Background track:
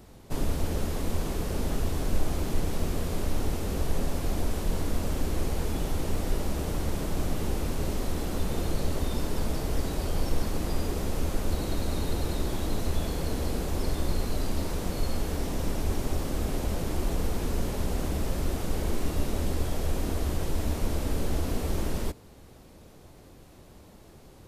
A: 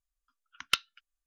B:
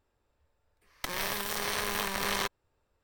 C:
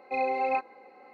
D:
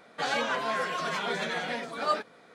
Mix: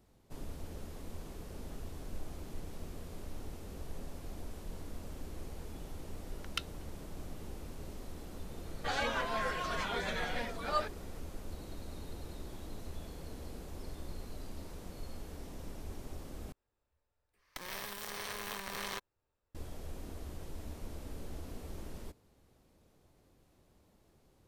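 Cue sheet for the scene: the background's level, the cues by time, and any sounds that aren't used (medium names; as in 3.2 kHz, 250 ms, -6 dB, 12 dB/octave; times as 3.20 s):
background track -16 dB
5.84 s: add A -11 dB
8.66 s: add D -5.5 dB
16.52 s: replace with B -9.5 dB
not used: C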